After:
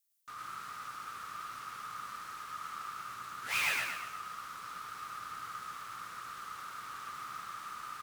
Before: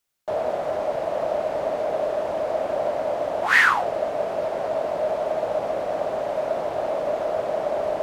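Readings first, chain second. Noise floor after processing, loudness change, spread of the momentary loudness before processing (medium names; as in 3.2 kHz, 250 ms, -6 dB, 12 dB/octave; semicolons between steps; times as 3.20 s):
-47 dBFS, -15.5 dB, 7 LU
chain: ring modulator 600 Hz; differentiator; in parallel at -7.5 dB: integer overflow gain 27 dB; on the sum: peaking EQ 120 Hz +10.5 dB 0.33 oct; on a send: frequency-shifting echo 109 ms, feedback 44%, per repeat +56 Hz, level -3.5 dB; on the sum: bit-crushed delay 124 ms, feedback 35%, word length 8-bit, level -8 dB; trim -3.5 dB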